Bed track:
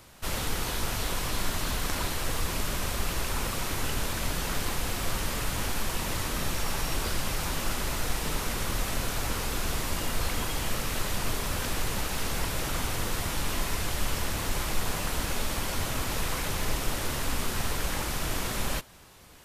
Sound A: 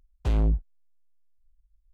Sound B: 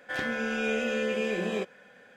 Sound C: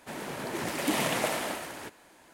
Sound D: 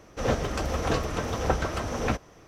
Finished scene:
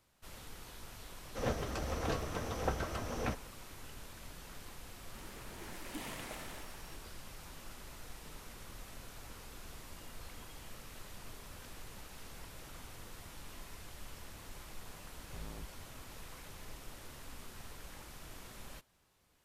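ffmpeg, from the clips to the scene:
-filter_complex "[0:a]volume=0.1[s0];[3:a]equalizer=f=630:t=o:w=0.77:g=-4[s1];[1:a]aeval=exprs='0.0668*(abs(mod(val(0)/0.0668+3,4)-2)-1)':c=same[s2];[4:a]atrim=end=2.47,asetpts=PTS-STARTPTS,volume=0.335,afade=t=in:d=0.004:c=hsin,afade=t=out:st=2.466:d=0.004:c=hsin,adelay=1180[s3];[s1]atrim=end=2.33,asetpts=PTS-STARTPTS,volume=0.158,afade=t=in:d=0.004:c=hsin,afade=t=out:st=2.326:d=0.004:c=hsin,adelay=5070[s4];[s2]atrim=end=1.93,asetpts=PTS-STARTPTS,volume=0.133,afade=t=in:d=0.004:c=hsin,afade=t=out:st=1.926:d=0.004:c=hsin,adelay=665028S[s5];[s0][s3][s4][s5]amix=inputs=4:normalize=0"

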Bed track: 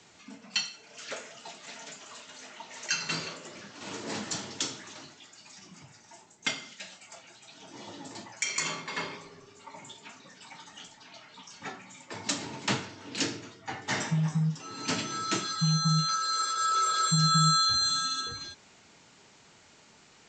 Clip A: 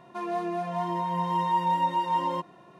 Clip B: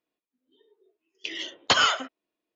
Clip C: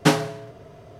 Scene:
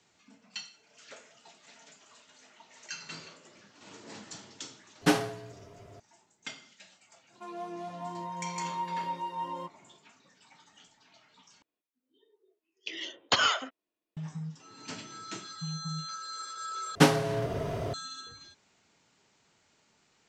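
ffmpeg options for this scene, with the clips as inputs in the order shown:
-filter_complex "[3:a]asplit=2[s0][s1];[0:a]volume=0.282[s2];[s0]aecho=1:1:10|75:0.596|0.224[s3];[1:a]bandreject=f=1800:w=17[s4];[s1]dynaudnorm=f=140:g=3:m=5.62[s5];[s2]asplit=3[s6][s7][s8];[s6]atrim=end=11.624[s9];[2:a]atrim=end=2.55,asetpts=PTS-STARTPTS,volume=0.596[s10];[s7]atrim=start=14.166:end=16.954[s11];[s5]atrim=end=0.99,asetpts=PTS-STARTPTS,volume=0.708[s12];[s8]atrim=start=17.936[s13];[s3]atrim=end=0.99,asetpts=PTS-STARTPTS,volume=0.422,afade=t=in:d=0.004:c=hsin,afade=t=out:st=0.986:d=0.004:c=hsin,adelay=220941S[s14];[s4]atrim=end=2.79,asetpts=PTS-STARTPTS,volume=0.335,afade=t=in:d=0.1,afade=t=out:st=2.69:d=0.1,adelay=7260[s15];[s9][s10]acrossfade=d=0.004:c1=hsin:c2=hsin[s16];[s16][s11]acrossfade=d=0.004:c1=hsin:c2=hsin[s17];[s17][s12]acrossfade=d=0.004:c1=hsin:c2=hsin[s18];[s18][s13]acrossfade=d=0.004:c1=hsin:c2=hsin[s19];[s19][s14][s15]amix=inputs=3:normalize=0"

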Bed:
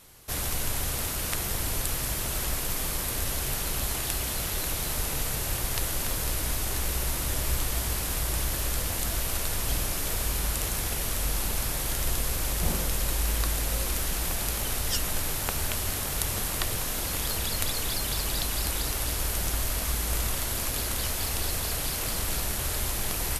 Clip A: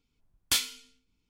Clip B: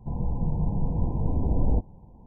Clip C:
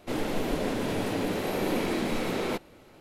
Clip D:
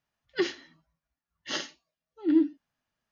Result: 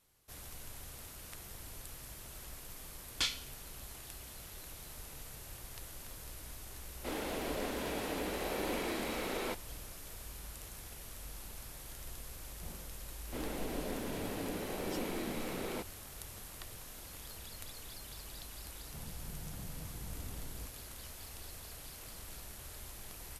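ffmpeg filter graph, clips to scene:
-filter_complex "[3:a]asplit=2[s0][s1];[0:a]volume=0.112[s2];[1:a]lowpass=5600[s3];[s0]highpass=f=420:p=1[s4];[2:a]acompressor=threshold=0.0631:ratio=6:attack=3.2:release=140:knee=1:detection=peak[s5];[s3]atrim=end=1.29,asetpts=PTS-STARTPTS,volume=0.562,afade=t=in:d=0.004:c=hsin,afade=t=out:st=1.286:d=0.004:c=hsin,adelay=2690[s6];[s4]atrim=end=3,asetpts=PTS-STARTPTS,volume=0.531,afade=t=in:d=0.004:c=hsin,afade=t=out:st=2.996:d=0.004:c=hsin,adelay=6970[s7];[s1]atrim=end=3,asetpts=PTS-STARTPTS,volume=0.299,afade=t=in:d=0.004:c=hsin,afade=t=out:st=2.996:d=0.004:c=hsin,adelay=13250[s8];[s5]atrim=end=2.26,asetpts=PTS-STARTPTS,volume=0.141,afade=t=in:d=0.004:c=hsin,afade=t=out:st=2.256:d=0.004:c=hsin,adelay=18870[s9];[s2][s6][s7][s8][s9]amix=inputs=5:normalize=0"

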